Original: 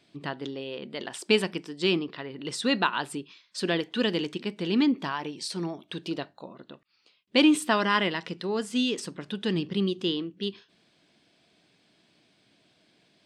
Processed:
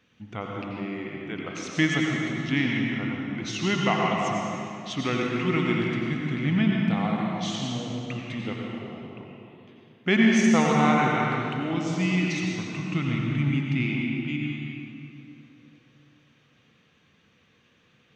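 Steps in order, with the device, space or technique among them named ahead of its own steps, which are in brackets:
slowed and reverbed (speed change −27%; convolution reverb RT60 2.8 s, pre-delay 80 ms, DRR −1.5 dB)
level −1.5 dB

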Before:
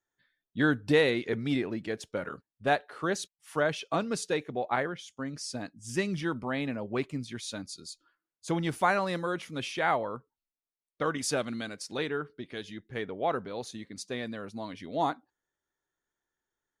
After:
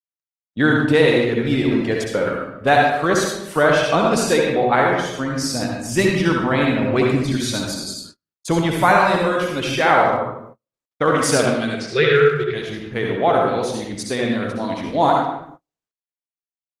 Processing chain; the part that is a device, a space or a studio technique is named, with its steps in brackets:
0:11.74–0:12.54: drawn EQ curve 100 Hz 0 dB, 150 Hz +11 dB, 260 Hz −20 dB, 400 Hz +13 dB, 830 Hz −17 dB, 1,300 Hz +6 dB, 2,100 Hz +10 dB, 4,900 Hz +1 dB, 7,700 Hz −10 dB, 13,000 Hz −24 dB
speakerphone in a meeting room (convolution reverb RT60 0.80 s, pre-delay 57 ms, DRR −0.5 dB; far-end echo of a speakerphone 150 ms, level −12 dB; automatic gain control gain up to 12 dB; noise gate −39 dBFS, range −38 dB; Opus 24 kbit/s 48,000 Hz)

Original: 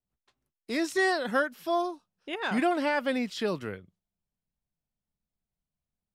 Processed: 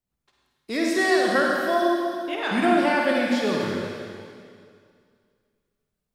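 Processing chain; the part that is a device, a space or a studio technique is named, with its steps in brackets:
tunnel (flutter between parallel walls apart 8.5 metres, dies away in 0.27 s; convolution reverb RT60 2.3 s, pre-delay 44 ms, DRR −1.5 dB)
level +2.5 dB

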